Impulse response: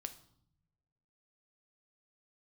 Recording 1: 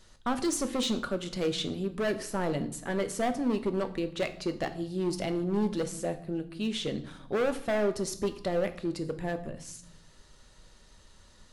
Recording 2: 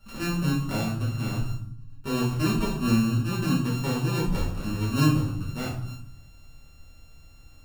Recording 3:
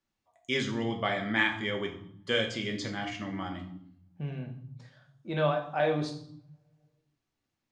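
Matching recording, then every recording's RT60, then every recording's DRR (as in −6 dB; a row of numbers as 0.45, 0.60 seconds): 1; 0.70, 0.65, 0.65 seconds; 8.5, −7.5, 2.0 decibels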